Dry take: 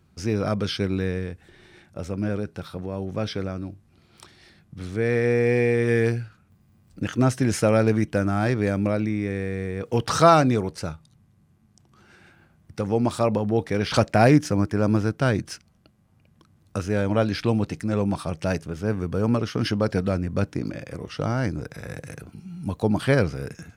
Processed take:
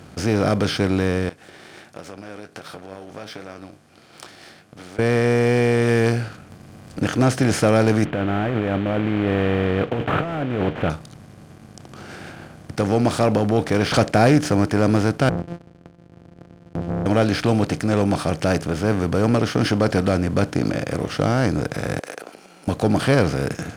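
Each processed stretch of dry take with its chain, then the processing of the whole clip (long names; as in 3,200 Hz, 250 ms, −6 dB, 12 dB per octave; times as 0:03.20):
0:01.29–0:04.99: downward compressor 4 to 1, threshold −38 dBFS + high-pass filter 810 Hz 6 dB per octave + flanger 1.4 Hz, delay 5.5 ms, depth 8.7 ms, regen +51%
0:08.05–0:10.90: variable-slope delta modulation 16 kbit/s + compressor whose output falls as the input rises −29 dBFS
0:15.29–0:17.06: samples sorted by size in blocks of 256 samples + resonant band-pass 140 Hz, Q 0.93 + tube saturation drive 28 dB, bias 0.3
0:21.99–0:22.68: downward compressor 2.5 to 1, threshold −41 dBFS + high-pass filter 460 Hz 24 dB per octave
whole clip: compressor on every frequency bin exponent 0.6; leveller curve on the samples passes 1; level −3 dB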